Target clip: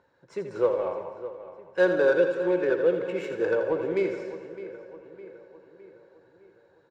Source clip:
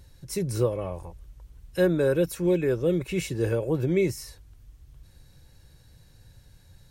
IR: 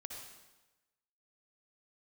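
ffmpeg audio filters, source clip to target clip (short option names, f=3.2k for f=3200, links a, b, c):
-filter_complex "[0:a]highpass=400,equalizer=f=500:t=q:w=4:g=5,equalizer=f=940:t=q:w=4:g=7,equalizer=f=1.5k:t=q:w=4:g=9,equalizer=f=7.3k:t=q:w=4:g=7,lowpass=f=8.2k:w=0.5412,lowpass=f=8.2k:w=1.3066,adynamicsmooth=sensitivity=1.5:basefreq=1.6k,asplit=2[a][b];[b]adelay=610,lowpass=f=3.5k:p=1,volume=-14dB,asplit=2[c][d];[d]adelay=610,lowpass=f=3.5k:p=1,volume=0.53,asplit=2[e][f];[f]adelay=610,lowpass=f=3.5k:p=1,volume=0.53,asplit=2[g][h];[h]adelay=610,lowpass=f=3.5k:p=1,volume=0.53,asplit=2[i][j];[j]adelay=610,lowpass=f=3.5k:p=1,volume=0.53[k];[a][c][e][g][i][k]amix=inputs=6:normalize=0,asplit=2[l][m];[1:a]atrim=start_sample=2205,adelay=83[n];[m][n]afir=irnorm=-1:irlink=0,volume=-2.5dB[o];[l][o]amix=inputs=2:normalize=0"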